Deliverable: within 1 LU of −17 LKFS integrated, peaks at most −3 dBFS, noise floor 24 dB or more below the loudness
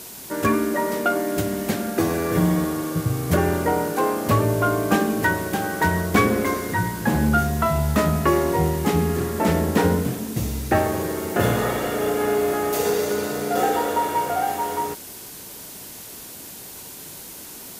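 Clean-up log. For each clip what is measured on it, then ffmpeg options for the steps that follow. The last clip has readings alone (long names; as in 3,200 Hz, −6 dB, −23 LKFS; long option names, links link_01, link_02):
background noise floor −39 dBFS; target noise floor −46 dBFS; integrated loudness −22.0 LKFS; sample peak −4.0 dBFS; target loudness −17.0 LKFS
→ -af "afftdn=noise_reduction=7:noise_floor=-39"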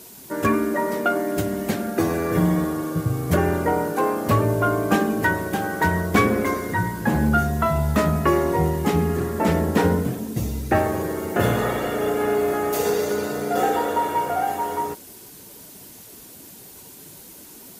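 background noise floor −44 dBFS; target noise floor −46 dBFS
→ -af "afftdn=noise_reduction=6:noise_floor=-44"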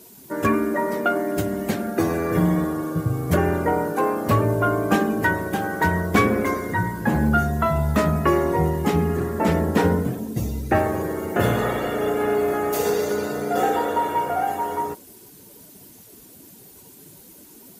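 background noise floor −47 dBFS; integrated loudness −22.0 LKFS; sample peak −4.0 dBFS; target loudness −17.0 LKFS
→ -af "volume=5dB,alimiter=limit=-3dB:level=0:latency=1"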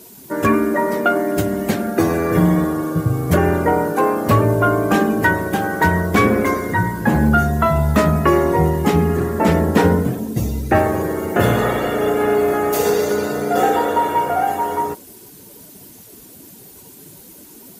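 integrated loudness −17.5 LKFS; sample peak −3.0 dBFS; background noise floor −42 dBFS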